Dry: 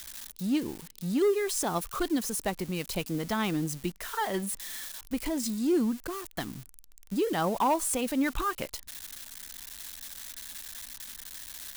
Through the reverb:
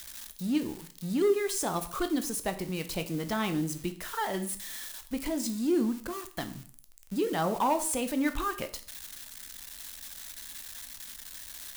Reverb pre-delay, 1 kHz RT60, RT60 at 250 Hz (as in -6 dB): 6 ms, 0.45 s, 0.45 s